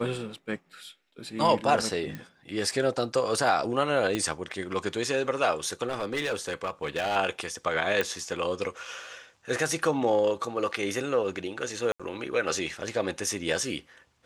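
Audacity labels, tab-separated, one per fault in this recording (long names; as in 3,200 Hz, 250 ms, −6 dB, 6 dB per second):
2.150000	2.150000	click −23 dBFS
4.150000	4.150000	click −14 dBFS
5.870000	7.170000	clipping −24.5 dBFS
8.010000	8.010000	click
11.920000	12.000000	drop-out 76 ms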